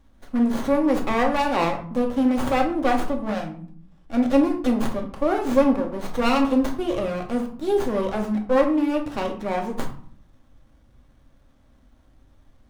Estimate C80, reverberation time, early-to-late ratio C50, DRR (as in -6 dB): 13.0 dB, 0.50 s, 9.0 dB, 1.5 dB